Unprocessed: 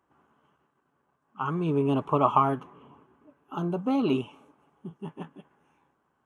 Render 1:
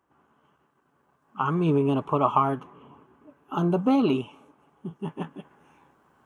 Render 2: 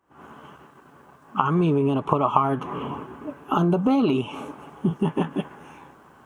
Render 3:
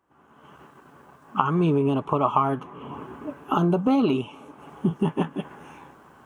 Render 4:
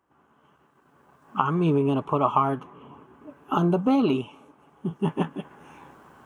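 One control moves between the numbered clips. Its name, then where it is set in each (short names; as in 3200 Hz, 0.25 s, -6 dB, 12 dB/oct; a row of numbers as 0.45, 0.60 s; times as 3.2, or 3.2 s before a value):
recorder AGC, rising by: 5.3, 90, 36, 14 dB/s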